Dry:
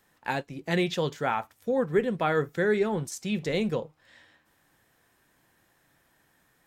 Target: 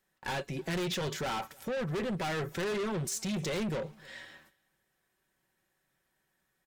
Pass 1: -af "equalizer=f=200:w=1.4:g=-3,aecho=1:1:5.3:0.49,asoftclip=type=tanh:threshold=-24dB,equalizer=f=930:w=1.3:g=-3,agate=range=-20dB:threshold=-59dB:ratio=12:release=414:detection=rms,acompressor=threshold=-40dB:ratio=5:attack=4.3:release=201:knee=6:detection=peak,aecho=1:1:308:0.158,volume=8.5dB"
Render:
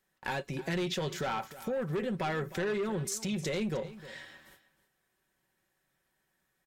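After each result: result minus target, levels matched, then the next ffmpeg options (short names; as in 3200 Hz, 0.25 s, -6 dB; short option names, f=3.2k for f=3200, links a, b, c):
echo-to-direct +10.5 dB; soft clip: distortion -6 dB
-af "equalizer=f=200:w=1.4:g=-3,aecho=1:1:5.3:0.49,asoftclip=type=tanh:threshold=-24dB,equalizer=f=930:w=1.3:g=-3,agate=range=-20dB:threshold=-59dB:ratio=12:release=414:detection=rms,acompressor=threshold=-40dB:ratio=5:attack=4.3:release=201:knee=6:detection=peak,aecho=1:1:308:0.0473,volume=8.5dB"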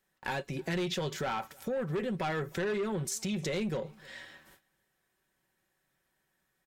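soft clip: distortion -6 dB
-af "equalizer=f=200:w=1.4:g=-3,aecho=1:1:5.3:0.49,asoftclip=type=tanh:threshold=-34.5dB,equalizer=f=930:w=1.3:g=-3,agate=range=-20dB:threshold=-59dB:ratio=12:release=414:detection=rms,acompressor=threshold=-40dB:ratio=5:attack=4.3:release=201:knee=6:detection=peak,aecho=1:1:308:0.0473,volume=8.5dB"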